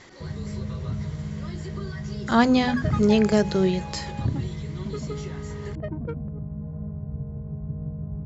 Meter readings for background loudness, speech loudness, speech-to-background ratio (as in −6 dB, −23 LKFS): −34.0 LKFS, −23.0 LKFS, 11.0 dB